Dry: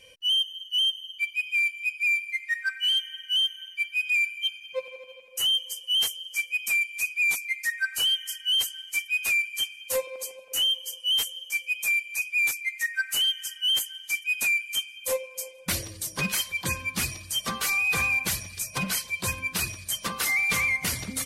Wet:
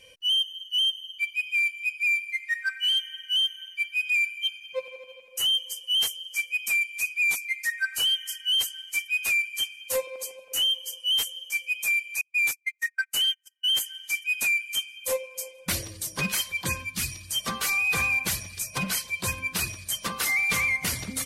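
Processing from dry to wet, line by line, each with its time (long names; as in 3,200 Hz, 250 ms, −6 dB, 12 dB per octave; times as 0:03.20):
0:12.21–0:13.73: noise gate −30 dBFS, range −38 dB
0:16.83–0:17.28: parametric band 660 Hz −13.5 dB → −7 dB 2.5 octaves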